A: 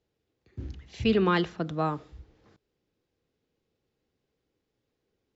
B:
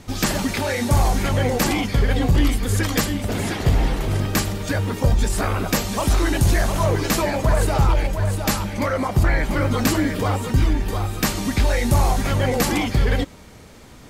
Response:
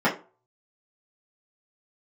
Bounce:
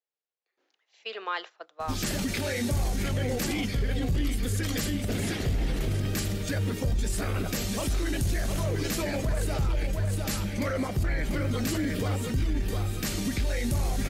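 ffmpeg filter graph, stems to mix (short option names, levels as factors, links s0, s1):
-filter_complex "[0:a]highpass=f=570:w=0.5412,highpass=f=570:w=1.3066,volume=0.631[s0];[1:a]equalizer=f=950:t=o:w=0.93:g=-10.5,alimiter=limit=0.141:level=0:latency=1:release=25,adelay=1800,volume=0.668[s1];[s0][s1]amix=inputs=2:normalize=0,agate=range=0.316:threshold=0.00891:ratio=16:detection=peak"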